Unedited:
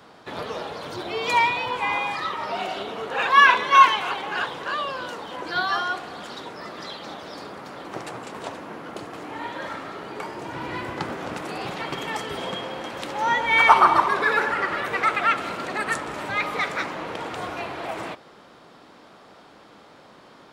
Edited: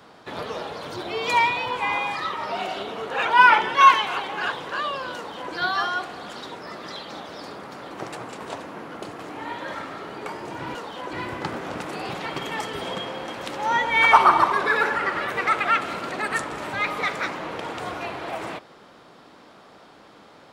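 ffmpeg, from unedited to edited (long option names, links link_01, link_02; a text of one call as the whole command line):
ffmpeg -i in.wav -filter_complex "[0:a]asplit=5[link_01][link_02][link_03][link_04][link_05];[link_01]atrim=end=3.254[link_06];[link_02]atrim=start=3.25:end=3.69,asetpts=PTS-STARTPTS,asetrate=38808,aresample=44100[link_07];[link_03]atrim=start=3.686:end=10.692[link_08];[link_04]atrim=start=5.098:end=5.482[link_09];[link_05]atrim=start=10.688[link_10];[link_06][link_07]acrossfade=duration=0.004:curve1=hsin:curve2=hsin[link_11];[link_11][link_08]acrossfade=duration=0.004:curve1=hsin:curve2=hsin[link_12];[link_12][link_09]acrossfade=duration=0.004:curve1=hsin:curve2=hsin[link_13];[link_13][link_10]acrossfade=duration=0.004:curve1=hsin:curve2=hsin" out.wav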